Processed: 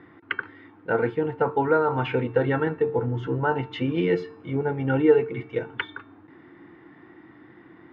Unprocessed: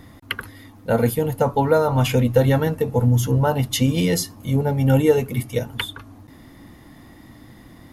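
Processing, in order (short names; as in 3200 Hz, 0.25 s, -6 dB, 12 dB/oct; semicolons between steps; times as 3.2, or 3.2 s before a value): speaker cabinet 190–2600 Hz, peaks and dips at 230 Hz -8 dB, 350 Hz +10 dB, 590 Hz -8 dB, 1500 Hz +7 dB; resonator 450 Hz, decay 0.54 s, mix 60%; gain +4.5 dB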